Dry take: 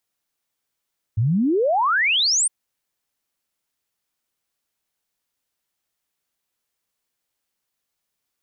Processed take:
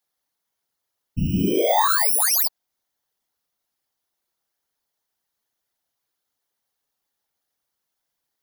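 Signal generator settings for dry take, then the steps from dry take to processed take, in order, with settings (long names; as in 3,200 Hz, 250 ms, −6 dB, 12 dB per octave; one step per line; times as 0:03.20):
exponential sine sweep 100 Hz → 9,400 Hz 1.31 s −16 dBFS
samples in bit-reversed order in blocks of 16 samples
thirty-one-band graphic EQ 160 Hz −7 dB, 800 Hz +5 dB, 2,500 Hz −7 dB, 8,000 Hz −6 dB
random phases in short frames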